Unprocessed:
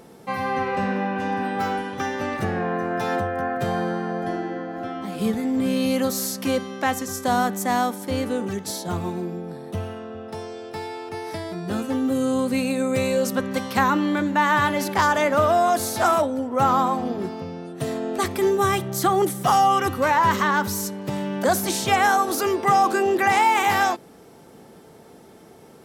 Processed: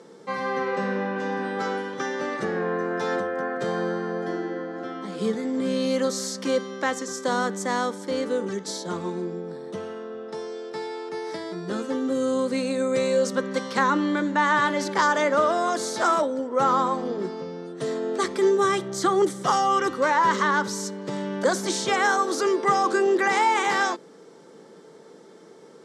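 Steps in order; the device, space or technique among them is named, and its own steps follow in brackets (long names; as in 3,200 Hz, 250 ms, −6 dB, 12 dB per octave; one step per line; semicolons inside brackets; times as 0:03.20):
television speaker (loudspeaker in its box 180–7,900 Hz, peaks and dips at 240 Hz −6 dB, 470 Hz +4 dB, 730 Hz −9 dB, 2,600 Hz −8 dB)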